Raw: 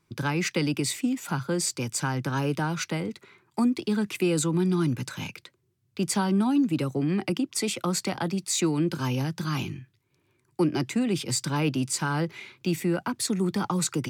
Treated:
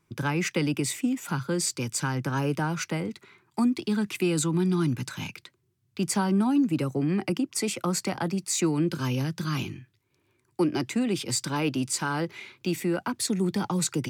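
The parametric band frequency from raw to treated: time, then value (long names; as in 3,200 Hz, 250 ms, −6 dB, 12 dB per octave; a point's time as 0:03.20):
parametric band −5.5 dB 0.48 octaves
4,300 Hz
from 0:01.27 700 Hz
from 0:02.15 3,800 Hz
from 0:03.07 510 Hz
from 0:06.08 3,600 Hz
from 0:08.84 820 Hz
from 0:09.64 150 Hz
from 0:13.25 1,200 Hz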